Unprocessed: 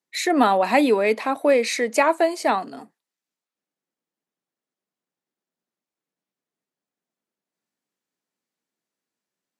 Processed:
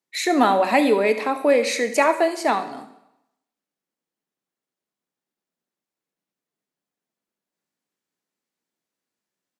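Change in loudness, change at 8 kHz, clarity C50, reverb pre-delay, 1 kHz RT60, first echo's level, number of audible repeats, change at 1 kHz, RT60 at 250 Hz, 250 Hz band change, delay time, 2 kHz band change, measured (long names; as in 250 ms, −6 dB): +0.5 dB, +0.5 dB, 11.0 dB, 21 ms, 0.85 s, −15.5 dB, 1, +0.5 dB, 0.85 s, 0.0 dB, 72 ms, +0.5 dB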